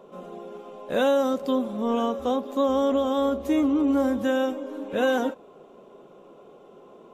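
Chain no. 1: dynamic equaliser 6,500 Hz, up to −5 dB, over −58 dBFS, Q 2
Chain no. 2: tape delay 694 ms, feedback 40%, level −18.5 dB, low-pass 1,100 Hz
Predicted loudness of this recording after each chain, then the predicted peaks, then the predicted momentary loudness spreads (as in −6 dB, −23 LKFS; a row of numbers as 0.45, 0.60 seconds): −24.5, −24.5 LKFS; −12.5, −12.5 dBFS; 17, 19 LU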